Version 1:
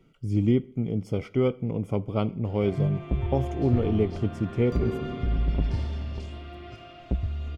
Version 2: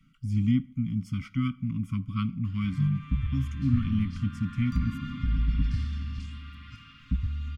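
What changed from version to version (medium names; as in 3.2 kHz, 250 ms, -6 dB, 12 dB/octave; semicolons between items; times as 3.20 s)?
master: add Chebyshev band-stop 270–1100 Hz, order 5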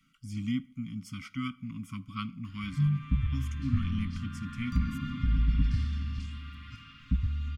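speech: add tone controls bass -12 dB, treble +5 dB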